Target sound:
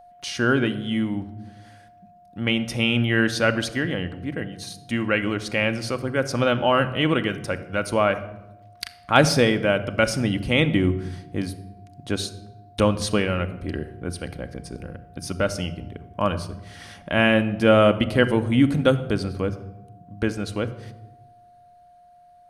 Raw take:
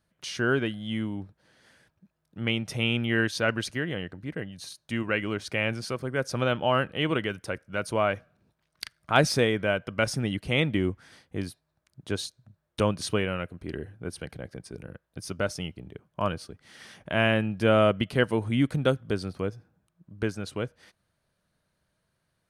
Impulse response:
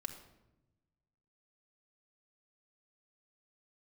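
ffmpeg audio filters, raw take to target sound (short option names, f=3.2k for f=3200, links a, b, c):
-filter_complex "[0:a]aeval=exprs='val(0)+0.00355*sin(2*PI*710*n/s)':c=same,asplit=2[a][b];[b]lowshelf=f=77:g=11.5[c];[1:a]atrim=start_sample=2205[d];[c][d]afir=irnorm=-1:irlink=0,volume=3.5dB[e];[a][e]amix=inputs=2:normalize=0,volume=-1.5dB"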